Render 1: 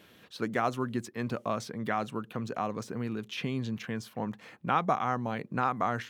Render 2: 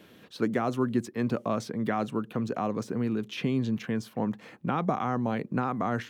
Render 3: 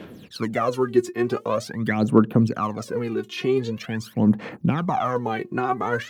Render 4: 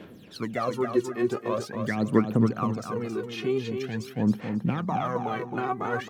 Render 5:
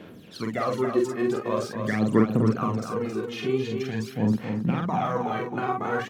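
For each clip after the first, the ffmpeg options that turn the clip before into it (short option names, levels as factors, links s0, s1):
-filter_complex "[0:a]equalizer=f=270:t=o:w=2.5:g=6.5,acrossover=split=380[s0][s1];[s1]alimiter=limit=0.1:level=0:latency=1:release=30[s2];[s0][s2]amix=inputs=2:normalize=0"
-af "aphaser=in_gain=1:out_gain=1:delay=2.8:decay=0.77:speed=0.45:type=sinusoidal,volume=1.41"
-af "aecho=1:1:270|540|810:0.473|0.114|0.0273,volume=0.531"
-filter_complex "[0:a]asplit=2[s0][s1];[s1]adelay=46,volume=0.708[s2];[s0][s2]amix=inputs=2:normalize=0"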